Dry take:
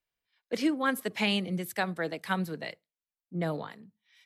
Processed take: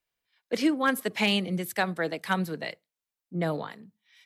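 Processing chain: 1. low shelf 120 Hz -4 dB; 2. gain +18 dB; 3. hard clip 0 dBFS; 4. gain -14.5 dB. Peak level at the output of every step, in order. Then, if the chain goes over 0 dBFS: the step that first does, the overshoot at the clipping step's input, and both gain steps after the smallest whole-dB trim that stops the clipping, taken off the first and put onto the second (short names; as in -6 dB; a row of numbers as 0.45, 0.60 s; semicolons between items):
-14.5, +3.5, 0.0, -14.5 dBFS; step 2, 3.5 dB; step 2 +14 dB, step 4 -10.5 dB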